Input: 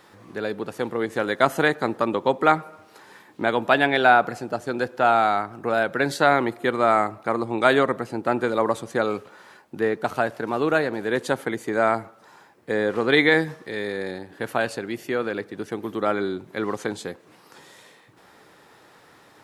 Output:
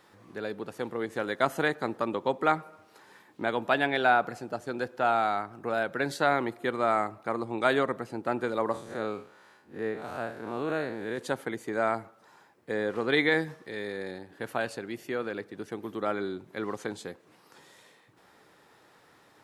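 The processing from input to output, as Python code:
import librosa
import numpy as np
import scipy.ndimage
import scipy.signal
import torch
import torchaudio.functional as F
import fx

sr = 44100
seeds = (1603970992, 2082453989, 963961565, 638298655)

y = fx.spec_blur(x, sr, span_ms=113.0, at=(8.72, 11.17), fade=0.02)
y = y * 10.0 ** (-7.0 / 20.0)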